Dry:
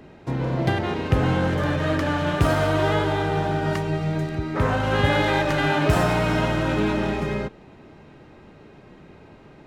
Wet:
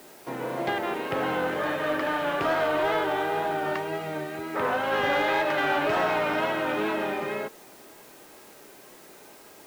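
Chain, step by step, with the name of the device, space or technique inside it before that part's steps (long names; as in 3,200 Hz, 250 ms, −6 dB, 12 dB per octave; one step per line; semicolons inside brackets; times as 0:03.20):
tape answering machine (band-pass filter 400–3,300 Hz; soft clipping −16 dBFS, distortion −20 dB; tape wow and flutter; white noise bed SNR 25 dB)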